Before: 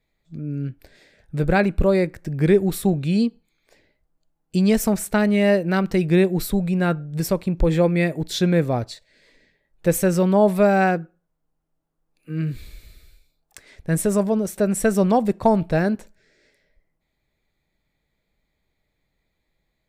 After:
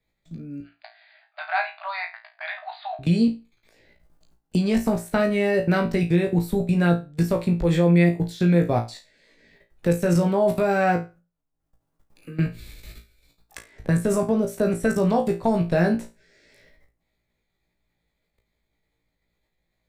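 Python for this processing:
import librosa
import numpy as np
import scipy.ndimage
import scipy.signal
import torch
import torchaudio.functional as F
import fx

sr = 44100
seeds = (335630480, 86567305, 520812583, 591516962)

y = fx.level_steps(x, sr, step_db=23)
y = fx.brickwall_bandpass(y, sr, low_hz=610.0, high_hz=4900.0, at=(0.6, 2.99))
y = fx.room_flutter(y, sr, wall_m=3.0, rt60_s=0.25)
y = fx.band_squash(y, sr, depth_pct=40)
y = y * librosa.db_to_amplitude(2.5)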